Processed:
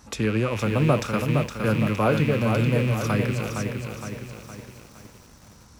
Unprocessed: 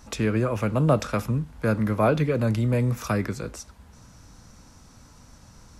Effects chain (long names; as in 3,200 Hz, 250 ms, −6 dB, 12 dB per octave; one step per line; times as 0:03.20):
loose part that buzzes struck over −35 dBFS, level −24 dBFS
high-pass filter 51 Hz 12 dB per octave
notch filter 650 Hz, Q 15
feedback echo at a low word length 464 ms, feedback 55%, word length 8 bits, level −5 dB